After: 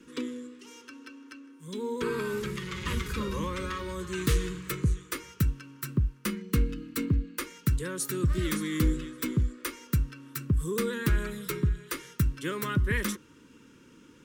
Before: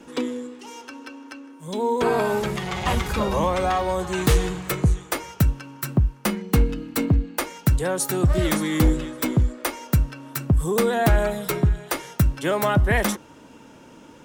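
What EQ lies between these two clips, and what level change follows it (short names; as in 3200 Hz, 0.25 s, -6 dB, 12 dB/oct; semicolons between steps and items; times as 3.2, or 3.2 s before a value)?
Butterworth band-stop 720 Hz, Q 1.1; -7.0 dB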